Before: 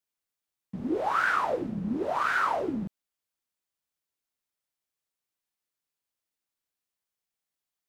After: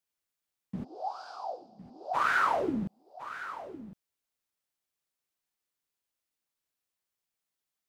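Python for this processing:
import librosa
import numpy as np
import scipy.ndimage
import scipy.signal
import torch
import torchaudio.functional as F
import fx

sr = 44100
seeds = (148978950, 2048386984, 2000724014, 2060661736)

y = fx.double_bandpass(x, sr, hz=1900.0, octaves=2.7, at=(0.83, 2.13), fade=0.02)
y = y + 10.0 ** (-13.5 / 20.0) * np.pad(y, (int(1058 * sr / 1000.0), 0))[:len(y)]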